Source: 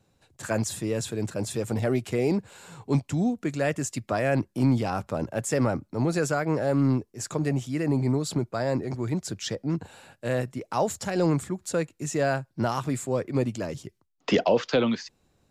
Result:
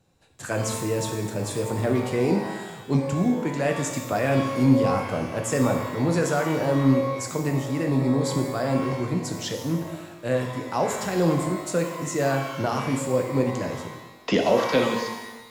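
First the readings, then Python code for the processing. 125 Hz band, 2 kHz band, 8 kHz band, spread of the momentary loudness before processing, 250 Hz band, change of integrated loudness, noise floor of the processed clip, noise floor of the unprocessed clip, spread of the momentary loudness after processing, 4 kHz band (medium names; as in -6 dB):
+2.0 dB, +3.0 dB, +2.0 dB, 7 LU, +3.0 dB, +2.5 dB, -44 dBFS, -70 dBFS, 9 LU, +3.0 dB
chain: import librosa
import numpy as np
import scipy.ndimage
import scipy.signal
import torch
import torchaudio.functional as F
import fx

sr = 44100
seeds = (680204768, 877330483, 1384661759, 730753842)

y = fx.rev_shimmer(x, sr, seeds[0], rt60_s=1.1, semitones=12, shimmer_db=-8, drr_db=3.0)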